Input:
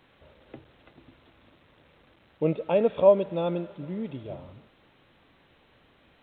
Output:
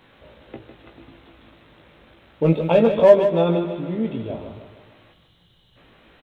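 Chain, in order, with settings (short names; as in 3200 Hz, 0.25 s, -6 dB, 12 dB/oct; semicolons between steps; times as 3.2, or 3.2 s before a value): 2.45–2.9 tone controls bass +3 dB, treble +10 dB; 5.13–5.76 spectral gain 210–2800 Hz -14 dB; in parallel at -5.5 dB: hard clip -18 dBFS, distortion -9 dB; on the sum: doubler 18 ms -4.5 dB; on a send: feedback echo 0.153 s, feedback 47%, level -9 dB; on the sum: gain +2.5 dB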